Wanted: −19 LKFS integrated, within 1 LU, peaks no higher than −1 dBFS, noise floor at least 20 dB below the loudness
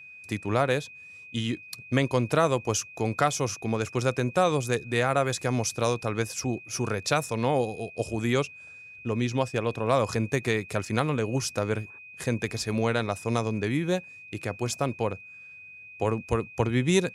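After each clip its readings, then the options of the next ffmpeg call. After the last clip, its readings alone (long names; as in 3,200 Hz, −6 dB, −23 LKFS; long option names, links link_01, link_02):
interfering tone 2,500 Hz; level of the tone −44 dBFS; integrated loudness −28.0 LKFS; sample peak −8.5 dBFS; target loudness −19.0 LKFS
→ -af "bandreject=frequency=2500:width=30"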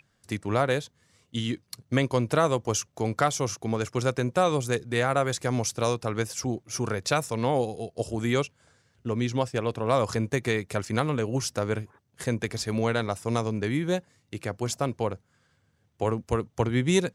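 interfering tone none found; integrated loudness −28.0 LKFS; sample peak −9.0 dBFS; target loudness −19.0 LKFS
→ -af "volume=9dB,alimiter=limit=-1dB:level=0:latency=1"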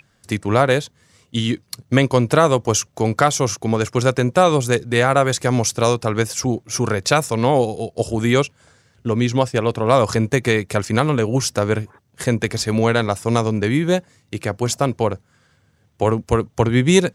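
integrated loudness −19.0 LKFS; sample peak −1.0 dBFS; background noise floor −60 dBFS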